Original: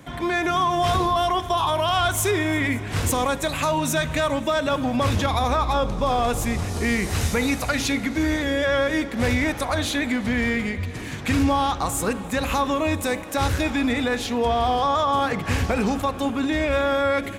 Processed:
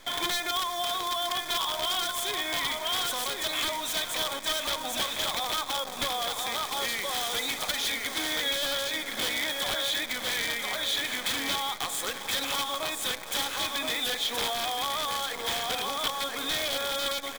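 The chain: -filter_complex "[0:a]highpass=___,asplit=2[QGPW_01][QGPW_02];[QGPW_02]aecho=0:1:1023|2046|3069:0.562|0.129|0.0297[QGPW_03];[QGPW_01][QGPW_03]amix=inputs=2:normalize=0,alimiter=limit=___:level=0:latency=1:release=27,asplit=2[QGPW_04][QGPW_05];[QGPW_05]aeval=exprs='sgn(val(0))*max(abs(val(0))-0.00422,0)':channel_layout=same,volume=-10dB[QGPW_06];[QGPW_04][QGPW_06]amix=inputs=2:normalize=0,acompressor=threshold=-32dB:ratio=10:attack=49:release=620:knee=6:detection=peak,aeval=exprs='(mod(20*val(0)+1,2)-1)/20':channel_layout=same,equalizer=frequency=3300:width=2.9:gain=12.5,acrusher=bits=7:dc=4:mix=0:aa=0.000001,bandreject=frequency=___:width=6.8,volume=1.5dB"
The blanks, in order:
610, -12dB, 2800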